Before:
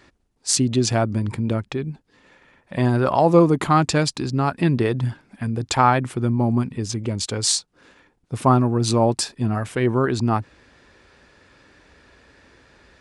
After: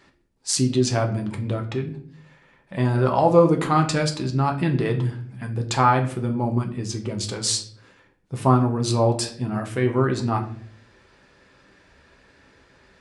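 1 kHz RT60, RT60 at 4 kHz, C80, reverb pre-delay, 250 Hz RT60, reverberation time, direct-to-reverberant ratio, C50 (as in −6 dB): 0.45 s, 0.40 s, 15.0 dB, 5 ms, 0.80 s, 0.55 s, 2.5 dB, 11.5 dB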